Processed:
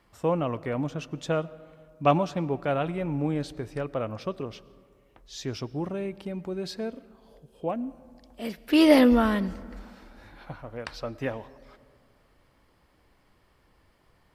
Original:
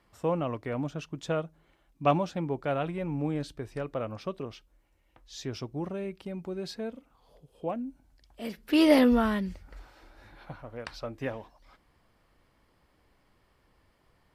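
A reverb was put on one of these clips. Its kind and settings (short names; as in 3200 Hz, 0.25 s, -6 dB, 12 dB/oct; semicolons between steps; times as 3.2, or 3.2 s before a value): digital reverb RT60 2.2 s, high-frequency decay 0.45×, pre-delay 65 ms, DRR 19.5 dB; gain +3 dB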